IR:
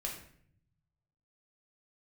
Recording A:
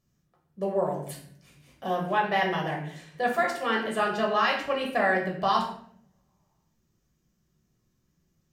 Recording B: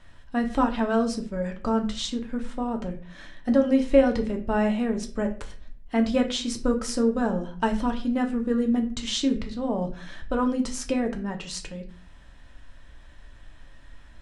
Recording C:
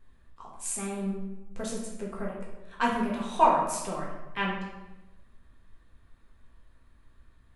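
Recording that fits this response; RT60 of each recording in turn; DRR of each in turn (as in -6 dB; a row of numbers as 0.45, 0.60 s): A; 0.60, 0.40, 1.1 s; -1.5, 3.5, -4.5 dB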